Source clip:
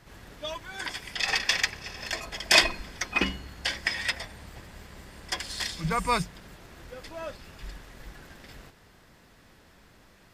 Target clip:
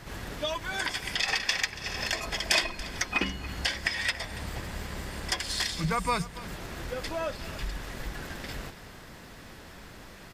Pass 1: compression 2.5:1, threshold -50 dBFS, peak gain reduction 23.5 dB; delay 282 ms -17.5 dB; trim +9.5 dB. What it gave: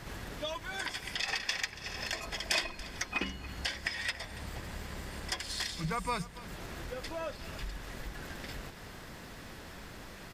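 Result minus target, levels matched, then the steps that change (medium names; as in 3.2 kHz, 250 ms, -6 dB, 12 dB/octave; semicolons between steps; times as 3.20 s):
compression: peak gain reduction +6 dB
change: compression 2.5:1, threshold -40 dBFS, peak gain reduction 17.5 dB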